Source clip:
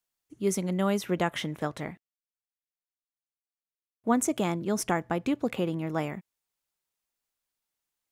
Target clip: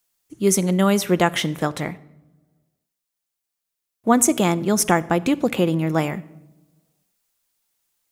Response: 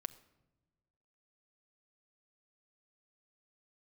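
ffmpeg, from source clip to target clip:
-filter_complex "[0:a]asplit=2[link_01][link_02];[1:a]atrim=start_sample=2205,highshelf=frequency=4200:gain=8.5[link_03];[link_02][link_03]afir=irnorm=-1:irlink=0,volume=7.5dB[link_04];[link_01][link_04]amix=inputs=2:normalize=0"

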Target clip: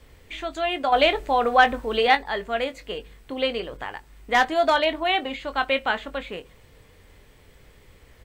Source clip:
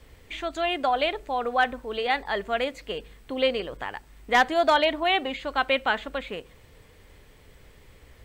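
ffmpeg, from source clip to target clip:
ffmpeg -i in.wav -filter_complex "[0:a]asettb=1/sr,asplit=3[link_01][link_02][link_03];[link_01]atrim=end=0.924[link_04];[link_02]atrim=start=0.92:end=2.15,asetpts=PTS-STARTPTS,afade=type=in:duration=0.004:curve=qsin,afade=type=out:start_time=1.226:duration=0.004:curve=qsin,acontrast=71[link_05];[link_03]atrim=start=2.146[link_06];[link_04][link_05]acrossfade=duration=0.004:curve1=hsin:curve2=qsin[link_07];[link_07][link_06]acrossfade=duration=0.004:curve1=qsin:curve2=hsin,asplit=2[link_08][link_09];[link_09]adelay=22,volume=-10.5dB[link_10];[link_08][link_10]amix=inputs=2:normalize=0" out.wav

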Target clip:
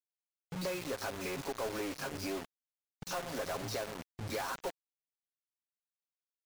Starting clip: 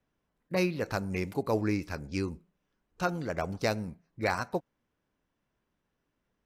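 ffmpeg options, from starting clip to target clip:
ffmpeg -i in.wav -filter_complex "[0:a]asettb=1/sr,asplit=3[link_01][link_02][link_03];[link_01]atrim=end=1.174[link_04];[link_02]atrim=start=1.17:end=3.44,asetpts=PTS-STARTPTS,afade=type=in:duration=0.004:curve=qsin,afade=type=out:start_time=2.266:duration=0.004:curve=qsin,aeval=exprs='if(lt(val(0),0),0.251*val(0),val(0))':channel_layout=same[link_05];[link_03]atrim=start=3.436[link_06];[link_04][link_05]acrossfade=duration=0.004:curve1=hsin:curve2=qsin[link_07];[link_07][link_06]acrossfade=duration=0.004:curve1=qsin:curve2=hsin,highpass=frequency=51:poles=1,aecho=1:1:7.4:0.63,acrossover=split=160|3700[link_08][link_09][link_10];[link_10]adelay=70[link_11];[link_09]adelay=110[link_12];[link_08][link_12][link_11]amix=inputs=3:normalize=0,acompressor=threshold=-39dB:ratio=8,asplit=2[link_13][link_14];[link_14]highpass=frequency=720:poles=1,volume=20dB,asoftclip=type=tanh:threshold=-27.5dB[link_15];[link_13][link_15]amix=inputs=2:normalize=0,lowpass=frequency=1800:poles=1,volume=-6dB,highshelf=frequency=4600:gain=11,aresample=16000,aresample=44100,equalizer=frequency=2100:width=1.5:gain=-4,acrusher=bits=6:mix=0:aa=0.000001,afftfilt=real='re*gte(hypot(re,im),0.000891)':imag='im*gte(hypot(re,im),0.000891)':win_size=1024:overlap=0.75" out.wav

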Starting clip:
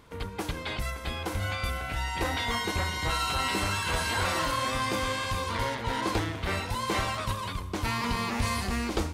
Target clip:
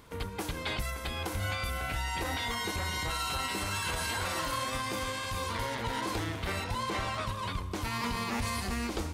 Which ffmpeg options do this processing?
ffmpeg -i in.wav -af "asetnsamples=nb_out_samples=441:pad=0,asendcmd='6.64 highshelf g -6;7.71 highshelf g 4',highshelf=frequency=7700:gain=6.5,alimiter=limit=-23.5dB:level=0:latency=1:release=143" out.wav

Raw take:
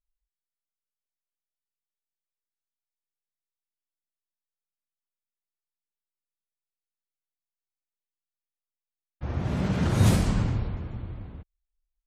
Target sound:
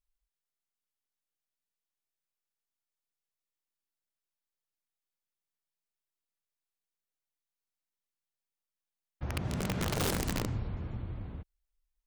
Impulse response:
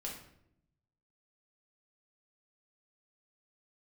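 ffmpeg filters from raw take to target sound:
-af "acompressor=threshold=-36dB:ratio=2,aeval=exprs='(mod(18.8*val(0)+1,2)-1)/18.8':channel_layout=same"

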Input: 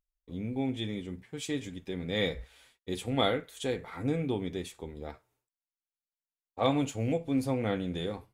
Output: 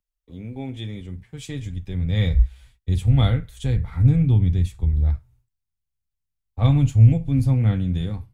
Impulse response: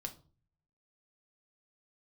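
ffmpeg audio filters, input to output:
-filter_complex "[0:a]asubboost=boost=9.5:cutoff=140,acrossover=split=120|2900[link_01][link_02][link_03];[link_01]dynaudnorm=framelen=710:gausssize=5:maxgain=15dB[link_04];[link_04][link_02][link_03]amix=inputs=3:normalize=0"

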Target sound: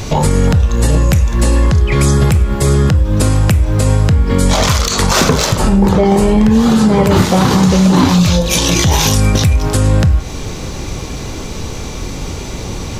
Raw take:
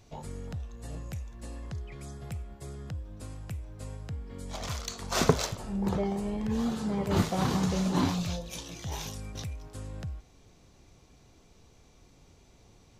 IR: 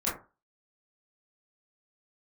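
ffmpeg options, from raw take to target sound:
-filter_complex "[0:a]bandreject=frequency=700:width=12,asplit=2[link_01][link_02];[1:a]atrim=start_sample=2205[link_03];[link_02][link_03]afir=irnorm=-1:irlink=0,volume=-17.5dB[link_04];[link_01][link_04]amix=inputs=2:normalize=0,volume=17.5dB,asoftclip=hard,volume=-17.5dB,acompressor=threshold=-40dB:ratio=10,alimiter=level_in=35dB:limit=-1dB:release=50:level=0:latency=1,volume=-1dB"

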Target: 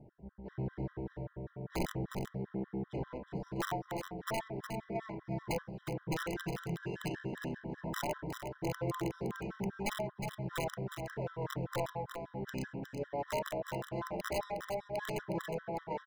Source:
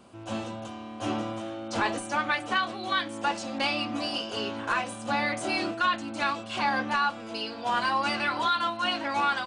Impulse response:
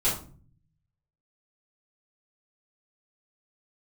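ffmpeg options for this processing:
-filter_complex "[0:a]equalizer=frequency=4700:width_type=o:width=2.3:gain=-6.5,bandreject=frequency=2000:width=5.1,acompressor=threshold=-30dB:ratio=16,tremolo=f=1.9:d=0.43,asetrate=25975,aresample=44100,adynamicsmooth=sensitivity=6:basefreq=1000,aeval=exprs='(mod(22.4*val(0)+1,2)-1)/22.4':channel_layout=same,aecho=1:1:362:0.447,asplit=2[link_01][link_02];[1:a]atrim=start_sample=2205,lowpass=2500[link_03];[link_02][link_03]afir=irnorm=-1:irlink=0,volume=-22dB[link_04];[link_01][link_04]amix=inputs=2:normalize=0,afftfilt=real='re*gt(sin(2*PI*5.1*pts/sr)*(1-2*mod(floor(b*sr/1024/1000),2)),0)':imag='im*gt(sin(2*PI*5.1*pts/sr)*(1-2*mod(floor(b*sr/1024/1000),2)),0)':win_size=1024:overlap=0.75"

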